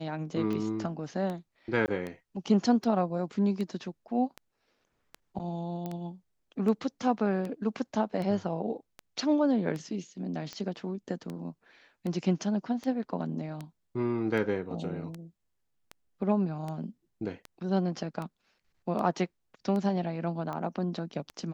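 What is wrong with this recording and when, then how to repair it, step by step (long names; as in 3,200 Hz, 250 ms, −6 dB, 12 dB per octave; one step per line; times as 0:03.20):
scratch tick 78 rpm −24 dBFS
0:01.86–0:01.88: drop-out 19 ms
0:05.86: click −23 dBFS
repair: click removal
repair the gap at 0:01.86, 19 ms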